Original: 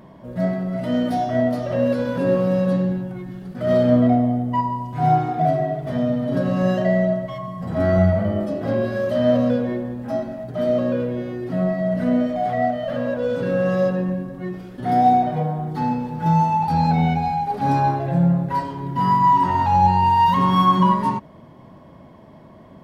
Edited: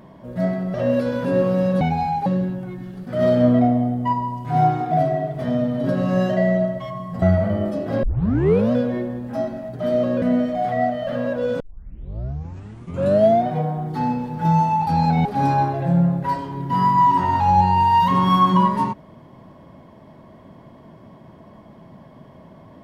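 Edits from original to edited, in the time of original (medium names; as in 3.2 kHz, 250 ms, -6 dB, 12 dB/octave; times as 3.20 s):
0.74–1.67 s: delete
7.70–7.97 s: delete
8.78 s: tape start 0.69 s
10.97–12.03 s: delete
13.41 s: tape start 1.88 s
17.06–17.51 s: move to 2.74 s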